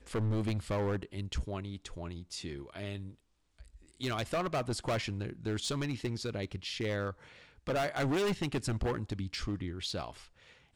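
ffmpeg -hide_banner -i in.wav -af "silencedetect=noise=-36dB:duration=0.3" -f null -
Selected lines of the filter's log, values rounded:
silence_start: 3.08
silence_end: 4.01 | silence_duration: 0.93
silence_start: 7.11
silence_end: 7.67 | silence_duration: 0.56
silence_start: 10.10
silence_end: 10.75 | silence_duration: 0.66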